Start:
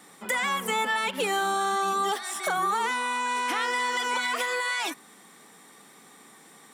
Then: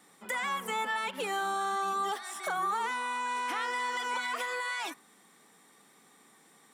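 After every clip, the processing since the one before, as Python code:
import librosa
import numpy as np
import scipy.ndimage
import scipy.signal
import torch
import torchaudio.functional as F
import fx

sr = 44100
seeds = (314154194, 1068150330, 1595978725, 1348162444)

y = fx.dynamic_eq(x, sr, hz=1100.0, q=0.77, threshold_db=-39.0, ratio=4.0, max_db=4)
y = F.gain(torch.from_numpy(y), -8.5).numpy()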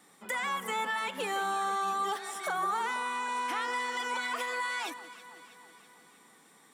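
y = fx.echo_alternate(x, sr, ms=162, hz=1300.0, feedback_pct=76, wet_db=-13.0)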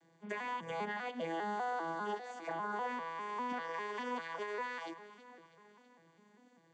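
y = fx.vocoder_arp(x, sr, chord='major triad', root=52, every_ms=199)
y = fx.notch_comb(y, sr, f0_hz=1300.0)
y = F.gain(torch.from_numpy(y), -5.0).numpy()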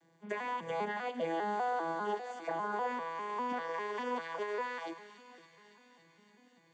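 y = fx.echo_wet_highpass(x, sr, ms=282, feedback_pct=77, hz=3300.0, wet_db=-9.5)
y = fx.dynamic_eq(y, sr, hz=540.0, q=0.79, threshold_db=-49.0, ratio=4.0, max_db=5)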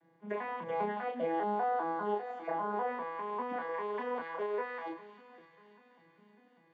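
y = scipy.signal.sosfilt(scipy.signal.butter(2, 2000.0, 'lowpass', fs=sr, output='sos'), x)
y = fx.doubler(y, sr, ms=34.0, db=-4.5)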